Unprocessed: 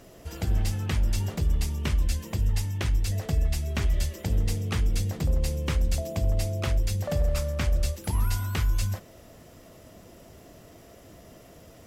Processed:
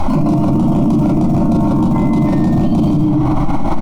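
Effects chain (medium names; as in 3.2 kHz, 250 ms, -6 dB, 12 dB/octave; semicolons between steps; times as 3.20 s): FFT filter 160 Hz 0 dB, 350 Hz +6 dB, 4.1 kHz -1 dB; delay 508 ms -4.5 dB; wide varispeed 3.11×; static phaser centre 450 Hz, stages 6; compression, threshold -33 dBFS, peak gain reduction 9 dB; tilt EQ -4.5 dB/octave; hum notches 60/120/180/240/300 Hz; reverberation RT60 0.70 s, pre-delay 11 ms, DRR -5 dB; loudness maximiser +35 dB; trim -6 dB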